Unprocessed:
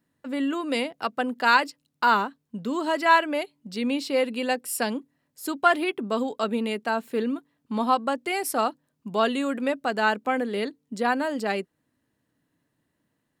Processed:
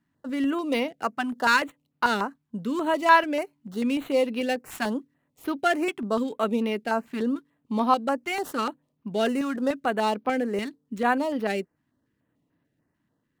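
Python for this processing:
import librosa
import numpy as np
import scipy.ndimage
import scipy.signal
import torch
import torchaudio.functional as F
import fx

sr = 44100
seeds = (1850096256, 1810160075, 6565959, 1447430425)

y = scipy.ndimage.median_filter(x, 9, mode='constant')
y = fx.filter_held_notch(y, sr, hz=6.8, low_hz=490.0, high_hz=7600.0)
y = F.gain(torch.from_numpy(y), 1.5).numpy()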